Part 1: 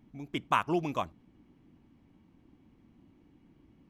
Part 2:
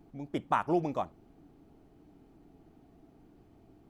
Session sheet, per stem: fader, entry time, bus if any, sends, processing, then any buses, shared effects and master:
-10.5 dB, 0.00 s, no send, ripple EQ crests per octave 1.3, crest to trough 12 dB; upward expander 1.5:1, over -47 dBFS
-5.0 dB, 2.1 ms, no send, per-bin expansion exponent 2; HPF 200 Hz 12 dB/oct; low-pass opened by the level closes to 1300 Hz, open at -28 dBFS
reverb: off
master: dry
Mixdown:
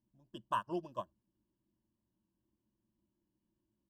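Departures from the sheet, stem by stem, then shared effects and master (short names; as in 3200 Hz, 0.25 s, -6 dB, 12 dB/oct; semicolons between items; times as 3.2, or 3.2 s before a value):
stem 2 -5.0 dB -> -17.0 dB; master: extra Butterworth band-stop 2200 Hz, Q 1.7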